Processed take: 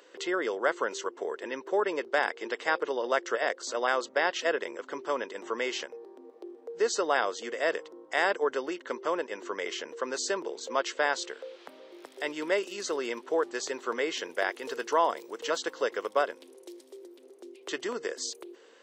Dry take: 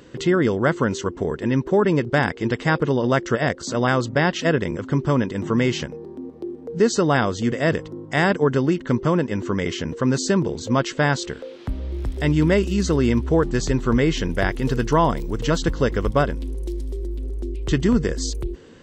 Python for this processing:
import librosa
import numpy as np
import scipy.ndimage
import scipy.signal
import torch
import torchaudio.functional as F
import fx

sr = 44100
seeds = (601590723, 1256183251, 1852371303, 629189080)

y = scipy.signal.sosfilt(scipy.signal.butter(4, 430.0, 'highpass', fs=sr, output='sos'), x)
y = F.gain(torch.from_numpy(y), -5.5).numpy()